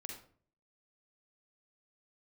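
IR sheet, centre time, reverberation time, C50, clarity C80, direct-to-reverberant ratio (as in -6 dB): 32 ms, 0.50 s, 3.5 dB, 8.5 dB, 0.5 dB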